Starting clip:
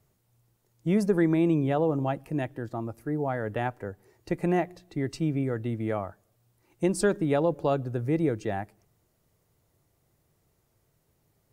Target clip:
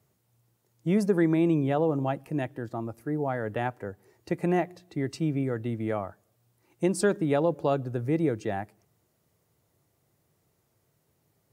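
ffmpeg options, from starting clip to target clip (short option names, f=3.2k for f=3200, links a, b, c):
-af "highpass=88"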